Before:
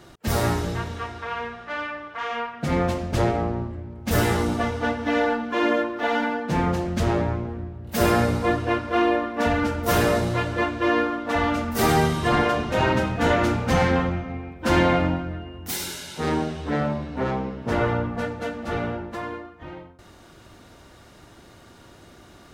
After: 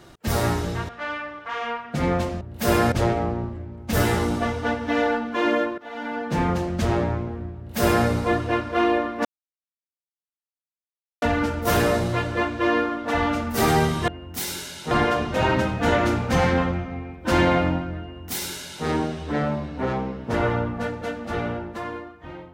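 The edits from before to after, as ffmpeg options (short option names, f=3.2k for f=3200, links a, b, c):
-filter_complex "[0:a]asplit=8[a][b][c][d][e][f][g][h];[a]atrim=end=0.892[i];[b]atrim=start=1.578:end=3.102[j];[c]atrim=start=7.738:end=8.252[k];[d]atrim=start=3.098:end=5.96,asetpts=PTS-STARTPTS,afade=t=out:st=2.858:d=0.004:c=hsin:silence=0.149624[l];[e]atrim=start=5.96:end=9.43,asetpts=PTS-STARTPTS,afade=t=in:d=0.45:c=qua:silence=0.149624,afade=t=out:st=3.466:d=0.004:c=hsin,apad=pad_dur=1.97[m];[f]atrim=start=9.43:end=12.292,asetpts=PTS-STARTPTS,afade=t=in:d=0.004:c=hsin[n];[g]atrim=start=15.398:end=16.232[o];[h]atrim=start=12.288[p];[i][j]acrossfade=d=0.004:c1=hsin:c2=hsin[q];[q][k]acrossfade=d=0.004:c1=hsin:c2=hsin[r];[l][m][n]concat=n=3:v=0:a=1[s];[r][s]acrossfade=d=0.004:c1=hsin:c2=hsin[t];[t][o]acrossfade=d=0.004:c1=hsin:c2=hsin[u];[u][p]acrossfade=d=0.004:c1=hsin:c2=hsin"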